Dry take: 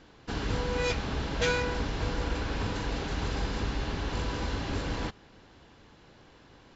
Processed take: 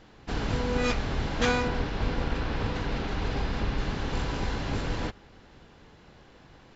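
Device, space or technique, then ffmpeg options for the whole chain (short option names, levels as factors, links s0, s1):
octave pedal: -filter_complex "[0:a]asplit=2[s0][s1];[s1]asetrate=22050,aresample=44100,atempo=2,volume=0.891[s2];[s0][s2]amix=inputs=2:normalize=0,asettb=1/sr,asplit=3[s3][s4][s5];[s3]atrim=end=1.684[s6];[s4]atrim=start=1.68:end=3.78,asetpts=PTS-STARTPTS,afade=t=in:d=0.004:c=qsin,afade=t=out:st=2.096:d=0.004:c=qsin,lowpass=5200[s7];[s5]atrim=start=3.776[s8];[s6][s7]acrossfade=d=0.004:c1=hsin:c2=qsin[s9];[s9][s8]acrossfade=d=0.004:c1=qsin:c2=hsin"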